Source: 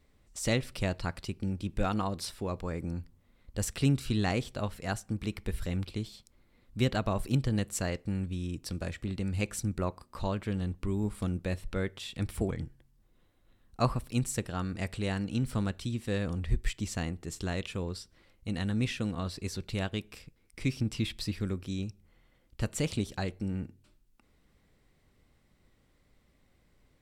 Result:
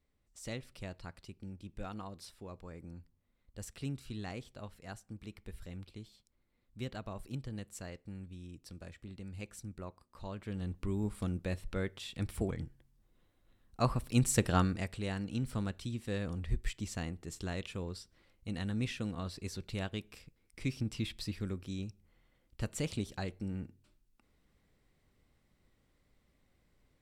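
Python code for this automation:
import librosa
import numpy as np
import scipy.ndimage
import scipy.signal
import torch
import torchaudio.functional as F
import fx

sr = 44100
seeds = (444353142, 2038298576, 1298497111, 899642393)

y = fx.gain(x, sr, db=fx.line((10.17, -13.0), (10.76, -3.5), (13.8, -3.5), (14.57, 7.0), (14.88, -5.0)))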